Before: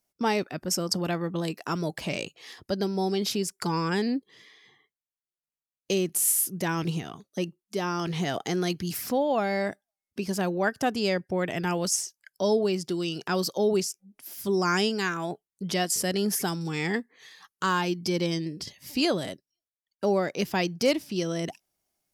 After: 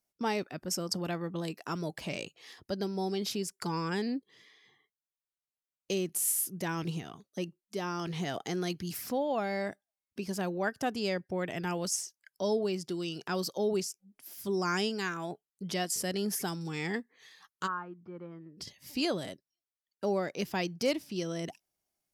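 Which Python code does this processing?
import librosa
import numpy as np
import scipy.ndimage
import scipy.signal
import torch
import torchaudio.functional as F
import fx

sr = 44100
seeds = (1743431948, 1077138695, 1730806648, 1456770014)

y = fx.ladder_lowpass(x, sr, hz=1400.0, resonance_pct=75, at=(17.66, 18.57), fade=0.02)
y = y * librosa.db_to_amplitude(-6.0)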